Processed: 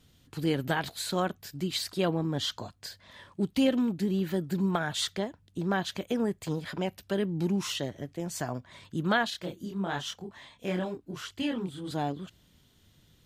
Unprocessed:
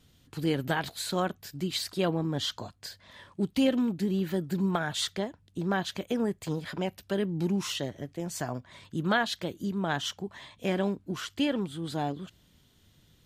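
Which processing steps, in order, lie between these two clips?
9.30–11.91 s: chorus voices 2, 1 Hz, delay 25 ms, depth 3 ms

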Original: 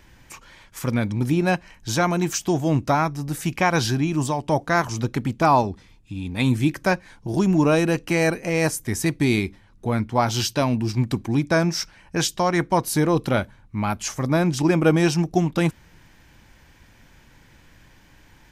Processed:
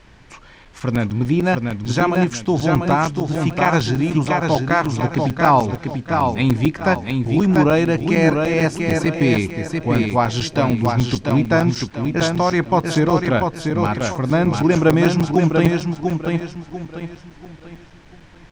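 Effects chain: added noise pink -55 dBFS; distance through air 110 m; feedback delay 691 ms, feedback 35%, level -4.5 dB; crackling interface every 0.15 s, samples 256, zero, from 0.65 s; trim +3.5 dB

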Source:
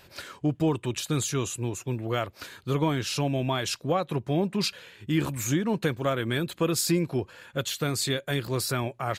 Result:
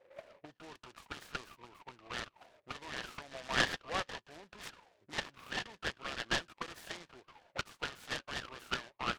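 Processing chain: time-frequency box 3.32–4.21 s, 450–2400 Hz +10 dB; auto-wah 500–1800 Hz, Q 16, up, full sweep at -23 dBFS; delay time shaken by noise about 1.3 kHz, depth 0.1 ms; trim +7.5 dB

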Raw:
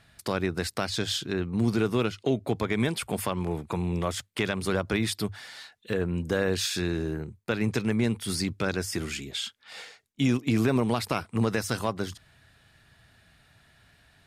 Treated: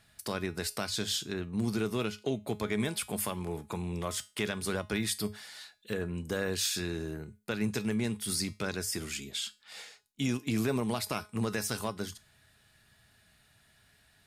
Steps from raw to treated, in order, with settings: treble shelf 5.4 kHz +10.5 dB; feedback comb 210 Hz, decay 0.29 s, harmonics all, mix 60%

